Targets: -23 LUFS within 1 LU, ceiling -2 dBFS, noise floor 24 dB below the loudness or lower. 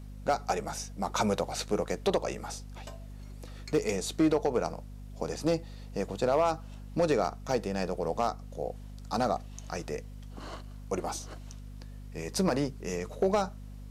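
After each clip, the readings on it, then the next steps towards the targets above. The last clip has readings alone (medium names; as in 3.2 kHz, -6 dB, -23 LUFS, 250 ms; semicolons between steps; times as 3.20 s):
clipped samples 0.3%; clipping level -18.0 dBFS; hum 50 Hz; highest harmonic 250 Hz; hum level -41 dBFS; loudness -31.5 LUFS; peak level -18.0 dBFS; loudness target -23.0 LUFS
-> clip repair -18 dBFS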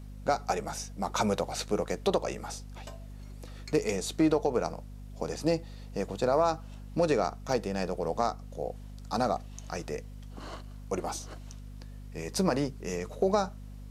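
clipped samples 0.0%; hum 50 Hz; highest harmonic 250 Hz; hum level -41 dBFS
-> de-hum 50 Hz, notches 5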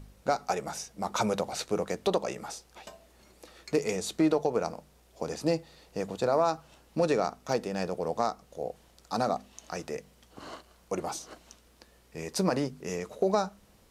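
hum not found; loudness -31.5 LUFS; peak level -12.5 dBFS; loudness target -23.0 LUFS
-> trim +8.5 dB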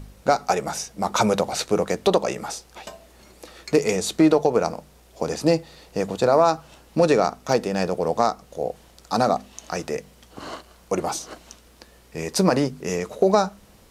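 loudness -23.0 LUFS; peak level -4.0 dBFS; noise floor -53 dBFS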